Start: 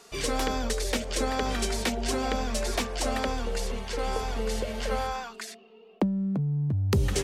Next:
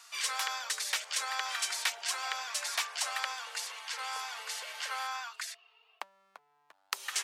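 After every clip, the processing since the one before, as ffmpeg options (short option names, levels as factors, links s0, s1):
-af "highpass=f=1000:w=0.5412,highpass=f=1000:w=1.3066"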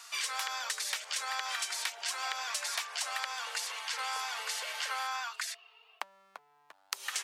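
-af "acompressor=threshold=0.0158:ratio=10,volume=1.68"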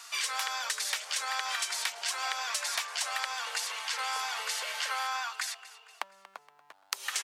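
-af "aecho=1:1:235|470|705|940:0.133|0.0613|0.0282|0.013,volume=1.33"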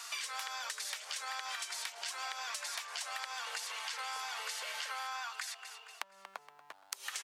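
-af "acompressor=threshold=0.01:ratio=6,volume=1.26"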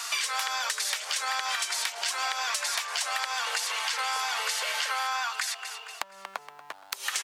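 -af "aeval=exprs='0.168*sin(PI/2*2.24*val(0)/0.168)':c=same"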